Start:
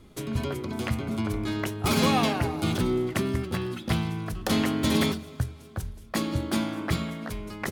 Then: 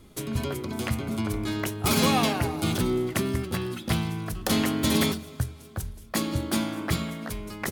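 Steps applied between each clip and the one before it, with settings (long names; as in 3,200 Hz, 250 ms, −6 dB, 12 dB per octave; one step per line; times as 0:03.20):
high-shelf EQ 6,600 Hz +8 dB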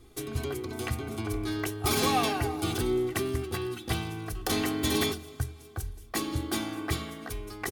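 comb filter 2.6 ms, depth 70%
level −4.5 dB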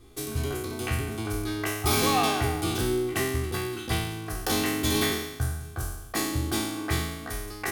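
peak hold with a decay on every bin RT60 0.94 s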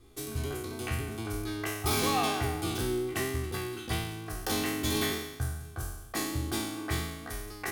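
pitch vibrato 4.3 Hz 19 cents
level −4.5 dB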